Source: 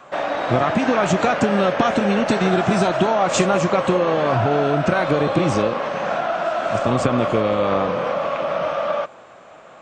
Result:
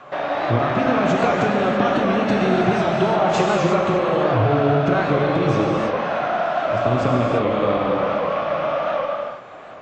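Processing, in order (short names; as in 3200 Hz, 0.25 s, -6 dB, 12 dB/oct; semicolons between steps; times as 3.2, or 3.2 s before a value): high shelf 4900 Hz +4.5 dB; in parallel at +2.5 dB: compressor, threshold -29 dBFS, peak gain reduction 16 dB; on the sum: air absorption 160 m; non-linear reverb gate 0.37 s flat, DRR -1 dB; record warp 78 rpm, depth 100 cents; gain -5.5 dB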